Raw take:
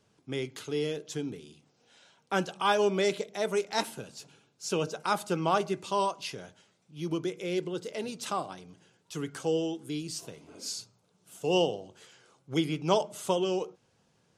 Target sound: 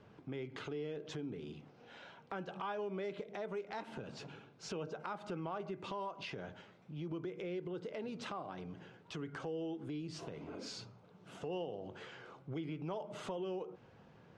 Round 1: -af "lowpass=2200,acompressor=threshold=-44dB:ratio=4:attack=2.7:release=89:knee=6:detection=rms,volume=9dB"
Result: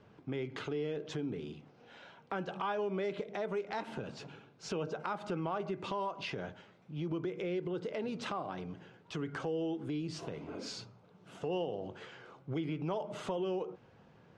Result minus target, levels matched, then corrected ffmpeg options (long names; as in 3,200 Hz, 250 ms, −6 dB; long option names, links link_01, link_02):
downward compressor: peak gain reduction −5 dB
-af "lowpass=2200,acompressor=threshold=-51dB:ratio=4:attack=2.7:release=89:knee=6:detection=rms,volume=9dB"